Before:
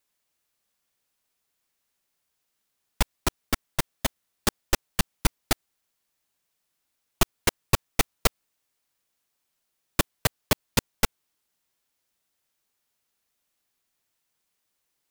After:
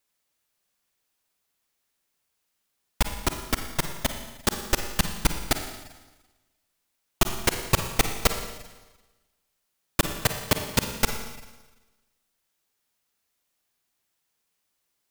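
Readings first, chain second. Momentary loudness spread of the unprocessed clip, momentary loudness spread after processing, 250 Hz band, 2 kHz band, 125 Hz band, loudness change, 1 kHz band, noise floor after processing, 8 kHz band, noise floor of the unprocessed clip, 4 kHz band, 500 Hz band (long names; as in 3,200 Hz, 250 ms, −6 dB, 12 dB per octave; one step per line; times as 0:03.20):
6 LU, 11 LU, +1.0 dB, +1.0 dB, +1.0 dB, +0.5 dB, +1.0 dB, −78 dBFS, +1.0 dB, −79 dBFS, +1.0 dB, +1.0 dB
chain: four-comb reverb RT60 1.2 s, DRR 6 dB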